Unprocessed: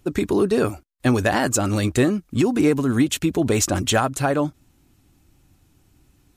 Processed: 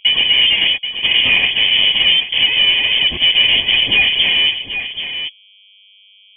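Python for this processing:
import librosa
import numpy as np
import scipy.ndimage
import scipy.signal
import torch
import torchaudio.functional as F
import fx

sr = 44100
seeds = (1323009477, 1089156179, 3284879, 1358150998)

y = fx.partial_stretch(x, sr, pct=108)
y = scipy.signal.sosfilt(scipy.signal.butter(2, 70.0, 'highpass', fs=sr, output='sos'), y)
y = fx.notch(y, sr, hz=730.0, q=12.0)
y = np.clip(y, -10.0 ** (-21.0 / 20.0), 10.0 ** (-21.0 / 20.0))
y = fx.small_body(y, sr, hz=(280.0, 830.0), ring_ms=65, db=15)
y = fx.fuzz(y, sr, gain_db=35.0, gate_db=-37.0)
y = fx.dmg_buzz(y, sr, base_hz=100.0, harmonics=10, level_db=-50.0, tilt_db=-5, odd_only=False)
y = fx.fixed_phaser(y, sr, hz=380.0, stages=8)
y = y + 10.0 ** (-9.5 / 20.0) * np.pad(y, (int(781 * sr / 1000.0), 0))[:len(y)]
y = fx.freq_invert(y, sr, carrier_hz=3300)
y = fx.band_squash(y, sr, depth_pct=70, at=(3.43, 4.19))
y = y * 10.0 ** (5.0 / 20.0)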